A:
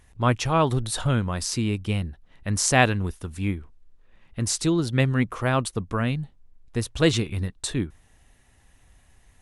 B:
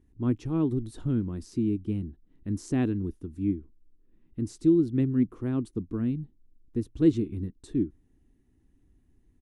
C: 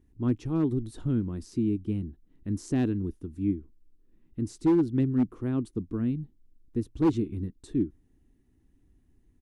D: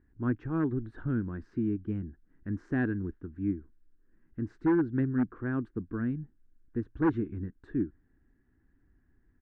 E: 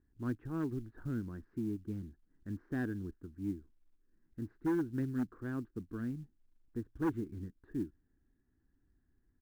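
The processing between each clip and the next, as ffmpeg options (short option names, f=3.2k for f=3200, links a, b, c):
-af "firequalizer=gain_entry='entry(130,0);entry(310,12);entry(560,-13);entry(2500,-16)':delay=0.05:min_phase=1,volume=-7dB"
-af "asoftclip=type=hard:threshold=-17.5dB"
-af "lowpass=f=1.6k:t=q:w=6.5,volume=-3.5dB"
-af "adynamicsmooth=sensitivity=3:basefreq=2.4k,acrusher=bits=8:mode=log:mix=0:aa=0.000001,volume=-7dB"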